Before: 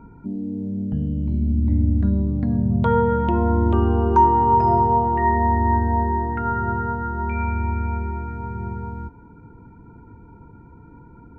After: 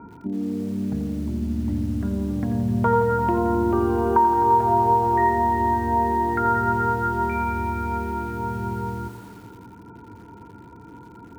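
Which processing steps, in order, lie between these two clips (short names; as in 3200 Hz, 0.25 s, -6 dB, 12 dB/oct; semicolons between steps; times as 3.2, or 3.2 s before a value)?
dynamic EQ 180 Hz, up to -4 dB, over -31 dBFS, Q 1.3; compressor 6:1, threshold -20 dBFS, peak gain reduction 9.5 dB; speaker cabinet 130–2100 Hz, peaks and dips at 150 Hz -9 dB, 240 Hz -4 dB, 530 Hz -4 dB; lo-fi delay 86 ms, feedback 80%, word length 8-bit, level -11 dB; gain +6 dB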